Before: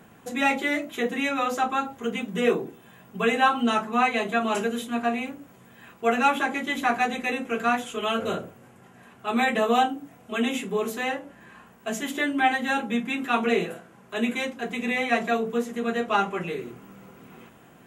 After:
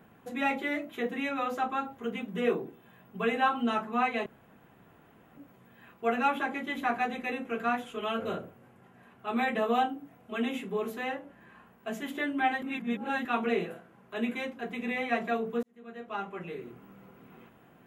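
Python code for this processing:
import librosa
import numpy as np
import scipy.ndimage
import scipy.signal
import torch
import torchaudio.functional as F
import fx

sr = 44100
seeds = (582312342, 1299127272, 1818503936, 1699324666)

y = fx.edit(x, sr, fx.room_tone_fill(start_s=4.26, length_s=1.11),
    fx.reverse_span(start_s=12.62, length_s=0.63),
    fx.fade_in_span(start_s=15.63, length_s=1.21), tone=tone)
y = fx.peak_eq(y, sr, hz=7300.0, db=-11.0, octaves=1.5)
y = F.gain(torch.from_numpy(y), -5.5).numpy()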